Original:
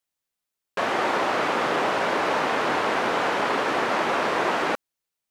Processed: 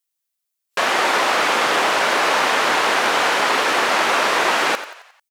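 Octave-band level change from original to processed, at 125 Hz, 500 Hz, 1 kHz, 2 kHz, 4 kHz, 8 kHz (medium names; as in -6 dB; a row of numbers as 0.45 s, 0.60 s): -2.5 dB, +3.0 dB, +5.5 dB, +8.5 dB, +11.0 dB, +14.0 dB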